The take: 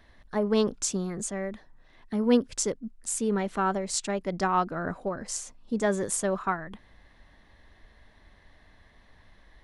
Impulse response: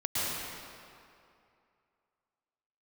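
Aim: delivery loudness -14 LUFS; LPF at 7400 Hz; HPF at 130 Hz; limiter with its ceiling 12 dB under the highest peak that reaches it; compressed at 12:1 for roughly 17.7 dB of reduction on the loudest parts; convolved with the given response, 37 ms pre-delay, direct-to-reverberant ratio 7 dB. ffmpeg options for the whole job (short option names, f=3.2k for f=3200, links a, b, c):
-filter_complex "[0:a]highpass=130,lowpass=7.4k,acompressor=threshold=-34dB:ratio=12,alimiter=level_in=9dB:limit=-24dB:level=0:latency=1,volume=-9dB,asplit=2[a][b];[1:a]atrim=start_sample=2205,adelay=37[c];[b][c]afir=irnorm=-1:irlink=0,volume=-16dB[d];[a][d]amix=inputs=2:normalize=0,volume=28dB"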